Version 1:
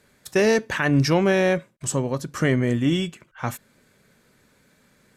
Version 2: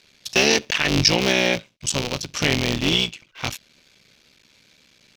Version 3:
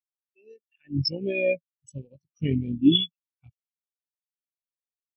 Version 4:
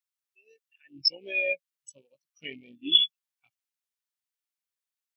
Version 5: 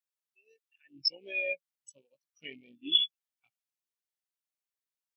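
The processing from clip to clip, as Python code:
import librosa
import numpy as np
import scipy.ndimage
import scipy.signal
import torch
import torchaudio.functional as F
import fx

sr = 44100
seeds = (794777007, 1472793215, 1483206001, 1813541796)

y1 = fx.cycle_switch(x, sr, every=3, mode='muted')
y1 = fx.band_shelf(y1, sr, hz=3800.0, db=14.5, octaves=1.7)
y1 = y1 * 10.0 ** (-1.0 / 20.0)
y2 = fx.fade_in_head(y1, sr, length_s=1.62)
y2 = fx.spectral_expand(y2, sr, expansion=4.0)
y2 = y2 * 10.0 ** (-5.5 / 20.0)
y3 = scipy.signal.sosfilt(scipy.signal.butter(2, 1100.0, 'highpass', fs=sr, output='sos'), y2)
y3 = y3 * 10.0 ** (4.0 / 20.0)
y4 = fx.low_shelf(y3, sr, hz=79.0, db=-9.0)
y4 = y4 * 10.0 ** (-5.0 / 20.0)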